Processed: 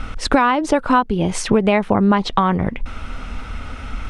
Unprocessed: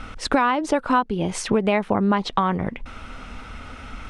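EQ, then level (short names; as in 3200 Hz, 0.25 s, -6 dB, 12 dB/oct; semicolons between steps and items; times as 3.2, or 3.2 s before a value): low shelf 100 Hz +7.5 dB; +4.0 dB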